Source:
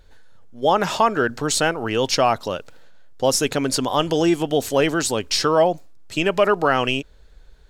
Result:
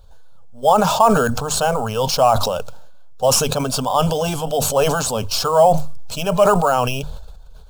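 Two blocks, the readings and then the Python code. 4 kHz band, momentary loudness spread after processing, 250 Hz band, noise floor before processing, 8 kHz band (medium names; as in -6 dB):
+0.5 dB, 9 LU, -1.0 dB, -48 dBFS, +3.5 dB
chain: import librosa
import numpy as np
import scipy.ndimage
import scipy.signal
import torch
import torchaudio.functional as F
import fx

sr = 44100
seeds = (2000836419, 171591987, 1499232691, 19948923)

p1 = fx.spec_quant(x, sr, step_db=15)
p2 = fx.hum_notches(p1, sr, base_hz=50, count=3)
p3 = fx.sample_hold(p2, sr, seeds[0], rate_hz=8300.0, jitter_pct=0)
p4 = p2 + (p3 * 10.0 ** (-7.0 / 20.0))
p5 = fx.fixed_phaser(p4, sr, hz=800.0, stages=4)
p6 = fx.sustainer(p5, sr, db_per_s=35.0)
y = p6 * 10.0 ** (2.0 / 20.0)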